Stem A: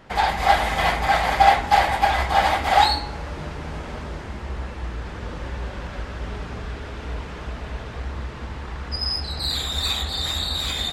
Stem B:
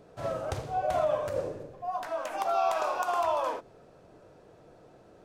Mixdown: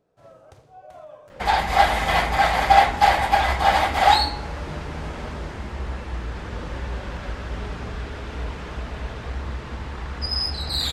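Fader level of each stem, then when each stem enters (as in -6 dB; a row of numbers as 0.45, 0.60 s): +0.5, -15.5 dB; 1.30, 0.00 s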